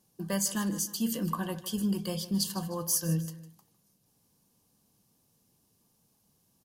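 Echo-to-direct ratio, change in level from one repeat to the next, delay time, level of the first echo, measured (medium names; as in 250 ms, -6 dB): -14.5 dB, -7.0 dB, 154 ms, -15.5 dB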